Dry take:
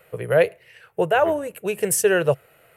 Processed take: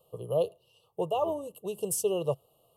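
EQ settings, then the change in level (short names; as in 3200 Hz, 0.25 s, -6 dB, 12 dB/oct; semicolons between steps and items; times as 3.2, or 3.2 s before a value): Chebyshev band-stop 1200–2800 Hz, order 5; -9.0 dB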